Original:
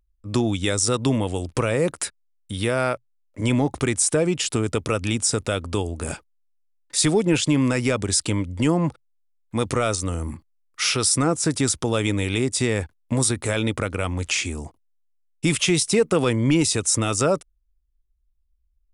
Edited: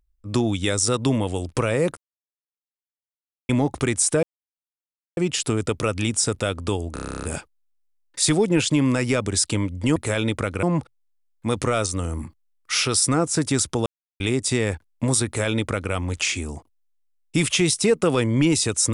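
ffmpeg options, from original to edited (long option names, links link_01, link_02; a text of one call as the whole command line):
ffmpeg -i in.wav -filter_complex "[0:a]asplit=18[link_01][link_02][link_03][link_04][link_05][link_06][link_07][link_08][link_09][link_10][link_11][link_12][link_13][link_14][link_15][link_16][link_17][link_18];[link_01]atrim=end=1.97,asetpts=PTS-STARTPTS,afade=type=out:start_time=1.966:duration=0.004:curve=hsin[link_19];[link_02]atrim=start=1.97:end=3.49,asetpts=PTS-STARTPTS,volume=0[link_20];[link_03]atrim=start=3.49:end=4.23,asetpts=PTS-STARTPTS,afade=type=in:duration=0.004:curve=hsin,afade=type=out:start_time=0.736:duration=0.004:curve=hsin,apad=pad_dur=0.94[link_21];[link_04]atrim=start=4.23:end=6.022,asetpts=PTS-STARTPTS,afade=type=in:duration=0.004:curve=hsin[link_22];[link_05]atrim=start=5.988:end=6.022[link_23];[link_06]atrim=start=5.988:end=6.022[link_24];[link_07]atrim=start=5.988:end=6.022[link_25];[link_08]atrim=start=5.988:end=6.022[link_26];[link_09]atrim=start=5.988:end=6.022[link_27];[link_10]atrim=start=5.988:end=6.022[link_28];[link_11]atrim=start=5.988:end=6.022[link_29];[link_12]atrim=start=5.988:end=6.022[link_30];[link_13]atrim=start=5.988:end=6.022[link_31];[link_14]atrim=start=5.988:end=8.722[link_32];[link_15]atrim=start=13.348:end=14.022[link_33];[link_16]atrim=start=8.718:end=11.95,asetpts=PTS-STARTPTS,afade=type=out:start_time=3.228:duration=0.004:curve=hsin[link_34];[link_17]atrim=start=11.95:end=12.29,asetpts=PTS-STARTPTS,volume=0[link_35];[link_18]atrim=start=12.29,asetpts=PTS-STARTPTS,afade=type=in:duration=0.004:curve=hsin[link_36];[link_19][link_20][link_21][link_22]concat=n=4:v=0:a=1[link_37];[link_37][link_23]acrossfade=duration=0.004:curve1=hsin:curve2=hsin[link_38];[link_38][link_24]acrossfade=duration=0.004:curve1=hsin:curve2=hsin[link_39];[link_39][link_25]acrossfade=duration=0.004:curve1=hsin:curve2=hsin[link_40];[link_40][link_26]acrossfade=duration=0.004:curve1=hsin:curve2=hsin[link_41];[link_41][link_27]acrossfade=duration=0.004:curve1=hsin:curve2=hsin[link_42];[link_42][link_28]acrossfade=duration=0.004:curve1=hsin:curve2=hsin[link_43];[link_43][link_29]acrossfade=duration=0.004:curve1=hsin:curve2=hsin[link_44];[link_44][link_30]acrossfade=duration=0.004:curve1=hsin:curve2=hsin[link_45];[link_45][link_31]acrossfade=duration=0.004:curve1=hsin:curve2=hsin[link_46];[link_46][link_32]acrossfade=duration=0.004:curve1=hsin:curve2=hsin[link_47];[link_47][link_33]acrossfade=duration=0.004:curve1=hsin:curve2=hsin[link_48];[link_34][link_35][link_36]concat=n=3:v=0:a=1[link_49];[link_48][link_49]acrossfade=duration=0.004:curve1=hsin:curve2=hsin" out.wav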